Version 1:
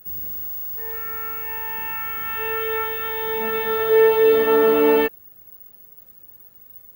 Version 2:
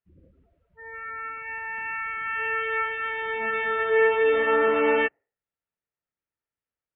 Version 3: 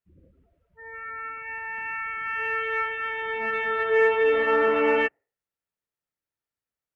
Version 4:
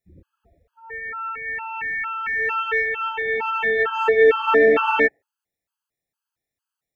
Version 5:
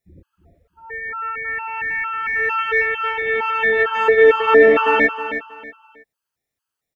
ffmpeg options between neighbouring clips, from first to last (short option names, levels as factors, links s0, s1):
-af "lowpass=f=2600:w=0.5412,lowpass=f=2600:w=1.3066,afftdn=nr=30:nf=-40,tiltshelf=f=1300:g=-8.5"
-af "aeval=exprs='0.299*(cos(1*acos(clip(val(0)/0.299,-1,1)))-cos(1*PI/2))+0.00299*(cos(7*acos(clip(val(0)/0.299,-1,1)))-cos(7*PI/2))':c=same"
-af "afftfilt=real='re*gt(sin(2*PI*2.2*pts/sr)*(1-2*mod(floor(b*sr/1024/840),2)),0)':imag='im*gt(sin(2*PI*2.2*pts/sr)*(1-2*mod(floor(b*sr/1024/840),2)),0)':win_size=1024:overlap=0.75,volume=2.51"
-af "aecho=1:1:319|638|957:0.316|0.0854|0.0231,volume=1.41"